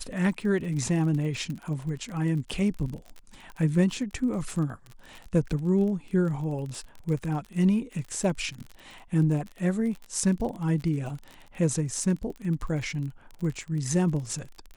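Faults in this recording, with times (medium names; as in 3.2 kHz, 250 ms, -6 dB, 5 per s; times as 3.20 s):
crackle 35 per s -34 dBFS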